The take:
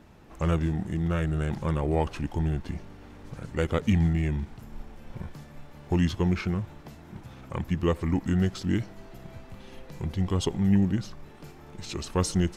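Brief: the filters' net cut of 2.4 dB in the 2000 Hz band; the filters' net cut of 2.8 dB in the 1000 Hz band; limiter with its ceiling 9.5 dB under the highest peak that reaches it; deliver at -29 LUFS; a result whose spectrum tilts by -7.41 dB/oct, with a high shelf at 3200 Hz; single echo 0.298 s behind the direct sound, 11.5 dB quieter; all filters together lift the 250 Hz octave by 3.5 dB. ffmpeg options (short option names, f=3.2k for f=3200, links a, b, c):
-af "equalizer=f=250:t=o:g=5.5,equalizer=f=1k:t=o:g=-3.5,equalizer=f=2k:t=o:g=-3.5,highshelf=f=3.2k:g=4.5,alimiter=limit=-19.5dB:level=0:latency=1,aecho=1:1:298:0.266,volume=0.5dB"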